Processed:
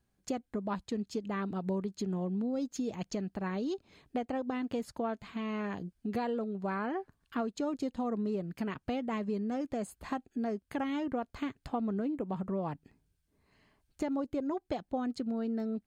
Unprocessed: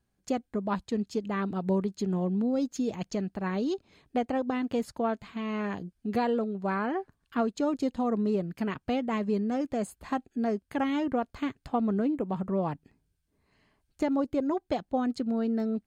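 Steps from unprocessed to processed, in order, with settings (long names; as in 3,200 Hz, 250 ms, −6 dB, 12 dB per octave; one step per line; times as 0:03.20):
downward compressor 2 to 1, threshold −35 dBFS, peak gain reduction 7 dB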